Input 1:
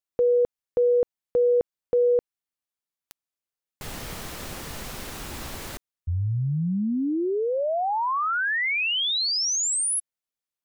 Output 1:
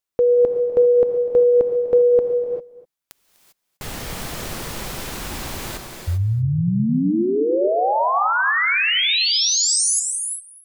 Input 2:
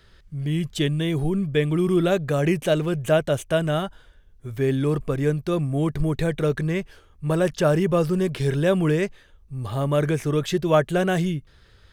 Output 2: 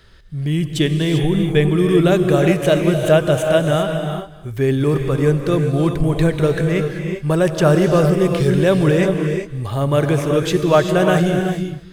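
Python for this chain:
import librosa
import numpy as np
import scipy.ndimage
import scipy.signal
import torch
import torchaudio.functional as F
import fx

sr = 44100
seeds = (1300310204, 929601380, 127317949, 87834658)

p1 = x + fx.echo_single(x, sr, ms=249, db=-18.5, dry=0)
p2 = fx.rev_gated(p1, sr, seeds[0], gate_ms=420, shape='rising', drr_db=4.5)
y = p2 * 10.0 ** (5.0 / 20.0)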